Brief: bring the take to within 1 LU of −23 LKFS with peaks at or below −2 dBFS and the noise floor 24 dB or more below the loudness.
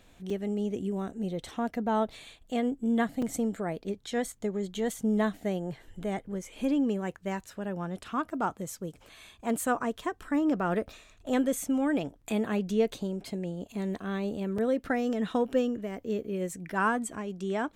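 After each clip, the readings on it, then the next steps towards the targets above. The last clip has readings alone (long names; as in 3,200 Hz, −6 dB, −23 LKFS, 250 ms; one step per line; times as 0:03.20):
number of dropouts 3; longest dropout 4.3 ms; integrated loudness −31.5 LKFS; sample peak −15.0 dBFS; target loudness −23.0 LKFS
→ repair the gap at 0:00.30/0:03.22/0:14.58, 4.3 ms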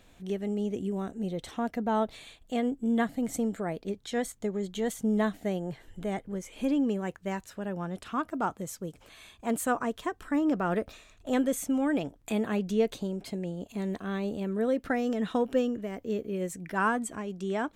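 number of dropouts 0; integrated loudness −31.5 LKFS; sample peak −15.0 dBFS; target loudness −23.0 LKFS
→ level +8.5 dB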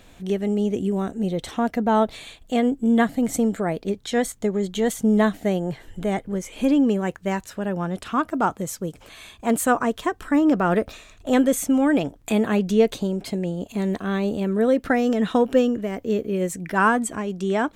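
integrated loudness −23.0 LKFS; sample peak −6.5 dBFS; background noise floor −51 dBFS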